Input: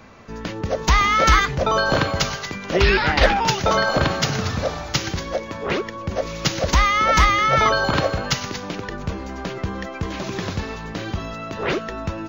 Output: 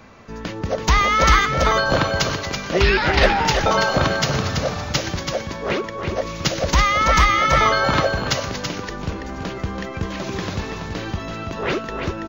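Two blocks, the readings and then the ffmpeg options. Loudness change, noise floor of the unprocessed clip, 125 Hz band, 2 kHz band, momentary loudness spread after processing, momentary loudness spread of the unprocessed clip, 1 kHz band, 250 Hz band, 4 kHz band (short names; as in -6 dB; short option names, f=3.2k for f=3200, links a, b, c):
+1.0 dB, -33 dBFS, +1.0 dB, +1.0 dB, 14 LU, 14 LU, +1.0 dB, +1.0 dB, +1.0 dB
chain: -af "aecho=1:1:331:0.473"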